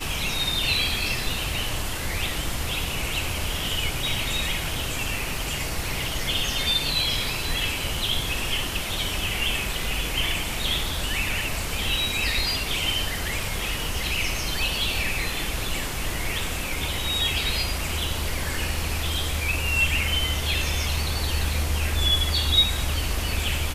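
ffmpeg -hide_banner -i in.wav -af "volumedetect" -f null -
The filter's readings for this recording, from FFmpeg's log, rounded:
mean_volume: -25.4 dB
max_volume: -7.3 dB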